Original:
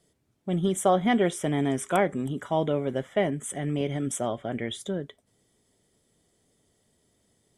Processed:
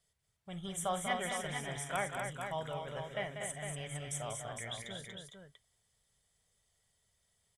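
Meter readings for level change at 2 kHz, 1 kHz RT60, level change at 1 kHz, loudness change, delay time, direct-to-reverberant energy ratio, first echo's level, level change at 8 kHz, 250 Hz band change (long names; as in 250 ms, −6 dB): −5.0 dB, no reverb audible, −9.5 dB, −11.5 dB, 46 ms, no reverb audible, −14.0 dB, −5.0 dB, −19.5 dB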